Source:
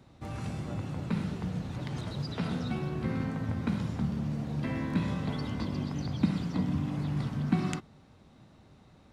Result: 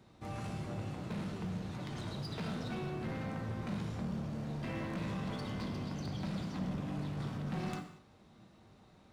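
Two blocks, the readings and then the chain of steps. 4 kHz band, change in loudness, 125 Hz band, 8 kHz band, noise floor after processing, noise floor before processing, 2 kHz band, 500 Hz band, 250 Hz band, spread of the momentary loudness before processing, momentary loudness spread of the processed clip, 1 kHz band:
-3.5 dB, -6.5 dB, -7.0 dB, no reading, -62 dBFS, -58 dBFS, -4.0 dB, -3.0 dB, -7.5 dB, 6 LU, 3 LU, -3.0 dB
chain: bass shelf 150 Hz -5 dB; overload inside the chain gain 33.5 dB; gated-style reverb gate 260 ms falling, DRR 5 dB; trim -3 dB

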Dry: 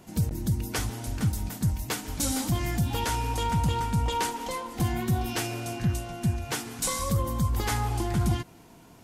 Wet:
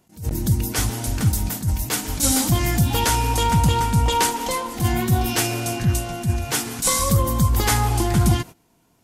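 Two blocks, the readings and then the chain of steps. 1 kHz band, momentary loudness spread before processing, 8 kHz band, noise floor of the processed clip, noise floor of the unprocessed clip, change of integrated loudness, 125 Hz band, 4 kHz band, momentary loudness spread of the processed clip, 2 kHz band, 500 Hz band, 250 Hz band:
+8.0 dB, 5 LU, +10.5 dB, -61 dBFS, -52 dBFS, +8.0 dB, +7.0 dB, +9.0 dB, 6 LU, +8.0 dB, +7.5 dB, +6.5 dB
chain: treble shelf 5.1 kHz +5.5 dB; gate -41 dBFS, range -18 dB; attacks held to a fixed rise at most 190 dB/s; trim +8 dB

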